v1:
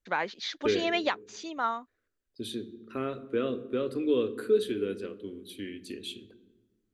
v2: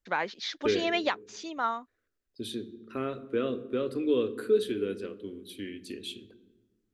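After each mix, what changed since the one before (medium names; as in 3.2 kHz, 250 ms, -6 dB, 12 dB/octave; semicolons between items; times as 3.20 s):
master: remove band-stop 5.3 kHz, Q 18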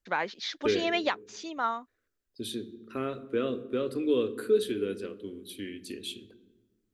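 second voice: add treble shelf 7.1 kHz +6.5 dB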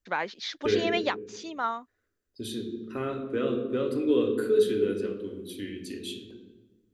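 second voice: send +10.5 dB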